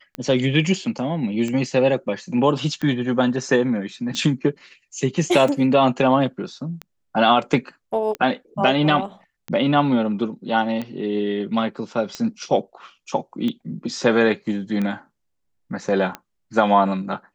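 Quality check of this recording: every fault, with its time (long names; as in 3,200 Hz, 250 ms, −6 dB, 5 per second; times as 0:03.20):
scratch tick 45 rpm −15 dBFS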